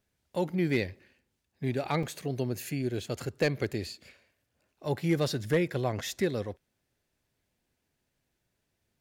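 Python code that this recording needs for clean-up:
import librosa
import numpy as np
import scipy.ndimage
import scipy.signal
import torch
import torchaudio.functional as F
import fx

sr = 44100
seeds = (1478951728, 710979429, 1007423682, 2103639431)

y = fx.fix_declip(x, sr, threshold_db=-16.5)
y = fx.fix_interpolate(y, sr, at_s=(0.96, 2.03, 4.79), length_ms=3.5)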